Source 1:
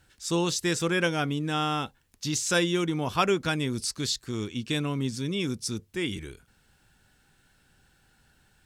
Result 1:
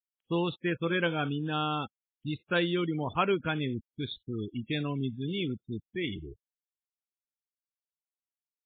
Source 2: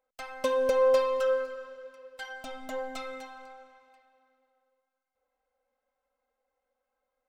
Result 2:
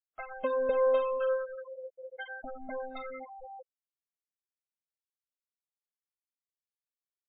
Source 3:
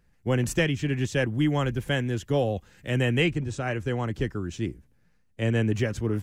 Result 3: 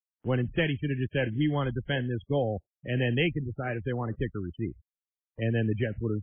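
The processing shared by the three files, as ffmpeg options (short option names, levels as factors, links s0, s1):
-af "afftfilt=real='re*gte(hypot(re,im),0.0316)':imag='im*gte(hypot(re,im),0.0316)':win_size=1024:overlap=0.75,acompressor=mode=upward:threshold=0.0251:ratio=2.5,volume=0.75" -ar 8000 -c:a libmp3lame -b:a 16k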